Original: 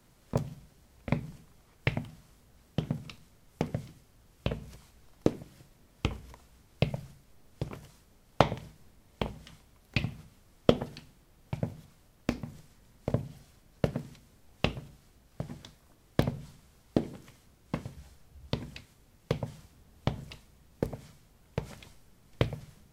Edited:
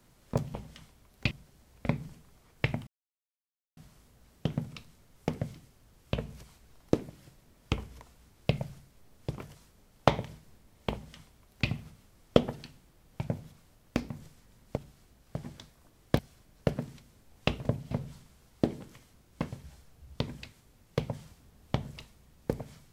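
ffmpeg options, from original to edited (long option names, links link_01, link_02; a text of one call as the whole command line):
ffmpeg -i in.wav -filter_complex "[0:a]asplit=8[link_01][link_02][link_03][link_04][link_05][link_06][link_07][link_08];[link_01]atrim=end=0.542[link_09];[link_02]atrim=start=9.248:end=10.022[link_10];[link_03]atrim=start=0.538:end=2.1,asetpts=PTS-STARTPTS,afade=type=out:start_time=1.558:duration=0.004:curve=hsin,apad=pad_dur=0.9[link_11];[link_04]atrim=start=2.1:end=13.102,asetpts=PTS-STARTPTS,afade=type=in:duration=0.004:curve=hsin[link_12];[link_05]atrim=start=14.818:end=16.242[link_13];[link_06]atrim=start=13.358:end=14.822[link_14];[link_07]atrim=start=13.098:end=13.362[link_15];[link_08]atrim=start=16.238[link_16];[link_09][link_10]acrossfade=duration=0.004:curve1=hsin:curve2=hsin[link_17];[link_11][link_12]concat=n=2:v=0:a=1[link_18];[link_17][link_18]acrossfade=duration=0.004:curve1=hsin:curve2=hsin[link_19];[link_19][link_13]acrossfade=duration=0.004:curve1=hsin:curve2=hsin[link_20];[link_20][link_14]acrossfade=duration=0.004:curve1=hsin:curve2=hsin[link_21];[link_21][link_15]acrossfade=duration=0.004:curve1=hsin:curve2=hsin[link_22];[link_22][link_16]acrossfade=duration=0.004:curve1=hsin:curve2=hsin" out.wav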